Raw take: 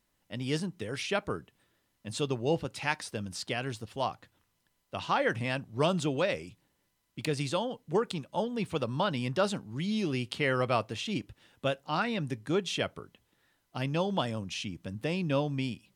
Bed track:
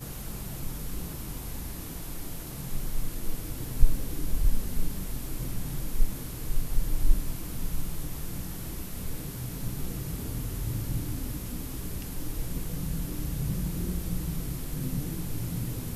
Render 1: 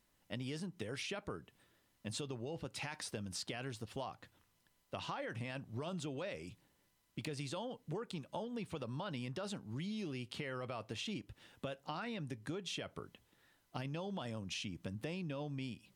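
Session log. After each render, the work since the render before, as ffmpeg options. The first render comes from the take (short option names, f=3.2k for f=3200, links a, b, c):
-af "alimiter=limit=-23.5dB:level=0:latency=1:release=21,acompressor=threshold=-39dB:ratio=10"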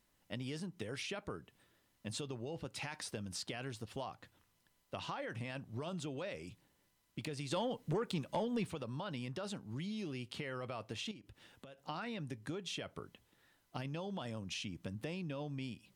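-filter_complex "[0:a]asplit=3[a][b][c];[a]afade=t=out:st=7.5:d=0.02[d];[b]aeval=exprs='0.0398*sin(PI/2*1.41*val(0)/0.0398)':c=same,afade=t=in:st=7.5:d=0.02,afade=t=out:st=8.7:d=0.02[e];[c]afade=t=in:st=8.7:d=0.02[f];[d][e][f]amix=inputs=3:normalize=0,asettb=1/sr,asplit=3[g][h][i];[g]atrim=end=11.114[j];[h]atrim=start=11.11:end=11.78,asetpts=PTS-STARTPTS,afade=t=in:d=0.004:c=qsin,afade=t=out:st=0.666:d=0.004:c=qsin,acompressor=threshold=-52dB:ratio=4:attack=3.2:release=140:knee=1:detection=peak[k];[i]atrim=start=11.776[l];[j][k]acrossfade=d=0.004:c1=hsin:c2=qsin[m];[m][l]acrossfade=d=0.004:c1=qsin:c2=hsin"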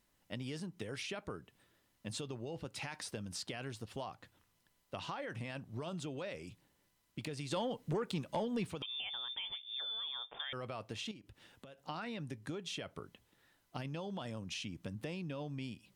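-filter_complex "[0:a]asettb=1/sr,asplit=3[a][b][c];[a]atrim=end=8.824[d];[b]atrim=start=8.82:end=10.53,asetpts=PTS-STARTPTS,afade=t=in:d=0.004:c=qsin,afade=t=out:st=1.706:d=0.004:c=qsin,lowpass=f=3.1k:t=q:w=0.5098,lowpass=f=3.1k:t=q:w=0.6013,lowpass=f=3.1k:t=q:w=0.9,lowpass=f=3.1k:t=q:w=2.563,afreqshift=-3700[e];[c]atrim=start=10.526[f];[d][e]acrossfade=d=0.004:c1=hsin:c2=qsin[g];[g][f]acrossfade=d=0.004:c1=qsin:c2=hsin"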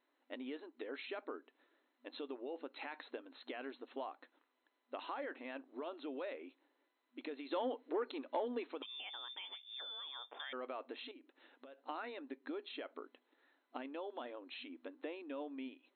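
-af "afftfilt=real='re*between(b*sr/4096,240,4200)':imag='im*between(b*sr/4096,240,4200)':win_size=4096:overlap=0.75,equalizer=f=3.2k:t=o:w=0.92:g=-7"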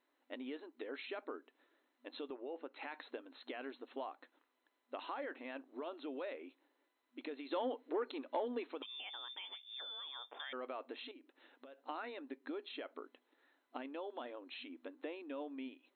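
-filter_complex "[0:a]asettb=1/sr,asplit=3[a][b][c];[a]atrim=end=2.304[d];[b]atrim=start=2.3:end=2.83,asetpts=PTS-STARTPTS,afade=t=in:d=0.004:c=qsin,afade=t=out:st=0.526:d=0.004:c=qsin,highpass=260,lowpass=2.9k[e];[c]atrim=start=2.826[f];[d][e]acrossfade=d=0.004:c1=hsin:c2=qsin[g];[g][f]acrossfade=d=0.004:c1=qsin:c2=hsin"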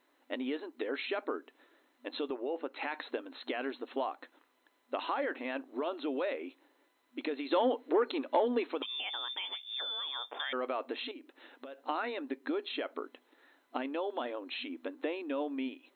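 -af "volume=9.5dB"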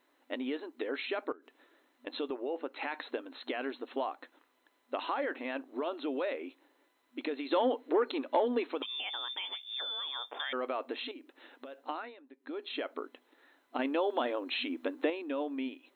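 -filter_complex "[0:a]asettb=1/sr,asplit=3[a][b][c];[a]atrim=end=1.324[d];[b]atrim=start=1.32:end=2.07,asetpts=PTS-STARTPTS,afade=t=in:d=0.004:c=qsin,afade=t=out:st=0.746:d=0.004:c=qsin,acompressor=threshold=-50dB:ratio=12:attack=3.2:release=140:knee=1:detection=peak[e];[c]atrim=start=2.066[f];[d][e]acrossfade=d=0.004:c1=hsin:c2=qsin[g];[g][f]acrossfade=d=0.004:c1=qsin:c2=hsin,asplit=5[h][i][j][k][l];[h]atrim=end=12.17,asetpts=PTS-STARTPTS,afade=t=out:st=11.77:d=0.4:silence=0.133352[m];[i]atrim=start=12.17:end=12.37,asetpts=PTS-STARTPTS,volume=-17.5dB[n];[j]atrim=start=12.37:end=13.792,asetpts=PTS-STARTPTS,afade=t=in:d=0.4:silence=0.133352[o];[k]atrim=start=13.788:end=15.102,asetpts=PTS-STARTPTS,volume=5dB[p];[l]atrim=start=15.098[q];[m][n][o]concat=n=3:v=0:a=1[r];[r][p]acrossfade=d=0.004:c1=hsin:c2=hsin[s];[s][q]acrossfade=d=0.004:c1=hsin:c2=hsin"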